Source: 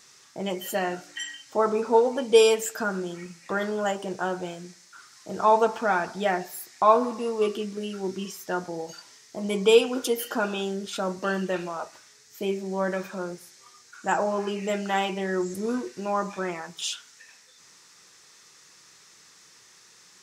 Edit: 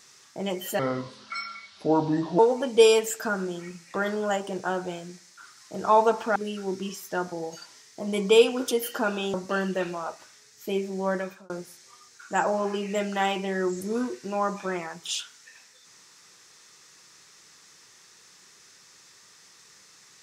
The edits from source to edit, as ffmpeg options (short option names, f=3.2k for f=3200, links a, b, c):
-filter_complex "[0:a]asplit=6[a][b][c][d][e][f];[a]atrim=end=0.794[g];[b]atrim=start=0.79:end=1.94,asetpts=PTS-STARTPTS,asetrate=31752,aresample=44100[h];[c]atrim=start=1.936:end=5.912[i];[d]atrim=start=7.718:end=10.702[j];[e]atrim=start=11.068:end=13.23,asetpts=PTS-STARTPTS,afade=t=out:st=1.792:d=0.37[k];[f]atrim=start=13.23,asetpts=PTS-STARTPTS,afade=t=in:d=0.004:c=hsin[l];[g][h]acrossfade=d=0.004:c1=hsin:c2=hsin[m];[m][i]acrossfade=d=0.004:c1=hsin:c2=hsin[n];[n][j]acrossfade=d=0.004:c1=hsin:c2=hsin[o];[k][l]concat=n=2:v=0:a=1[p];[o][p]acrossfade=d=0.004:c1=hsin:c2=hsin"